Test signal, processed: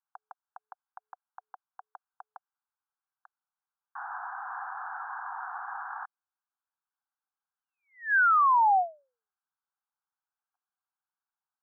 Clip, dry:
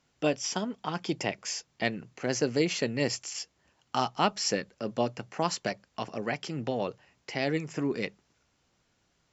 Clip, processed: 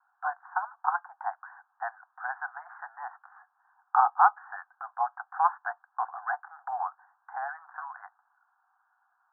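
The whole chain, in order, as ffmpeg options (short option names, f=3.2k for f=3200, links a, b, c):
-af "asuperpass=centerf=1100:order=20:qfactor=1.2,volume=8.5dB"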